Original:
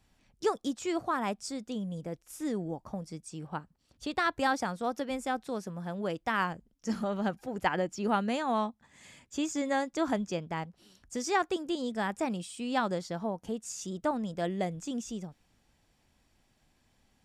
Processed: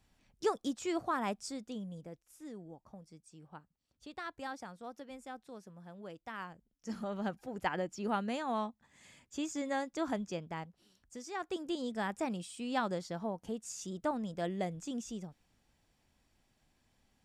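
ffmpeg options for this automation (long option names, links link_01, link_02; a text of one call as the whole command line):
ffmpeg -i in.wav -af "volume=15.5dB,afade=type=out:start_time=1.34:duration=0.99:silence=0.281838,afade=type=in:start_time=6.52:duration=0.69:silence=0.375837,afade=type=out:start_time=10.46:duration=0.88:silence=0.375837,afade=type=in:start_time=11.34:duration=0.29:silence=0.316228" out.wav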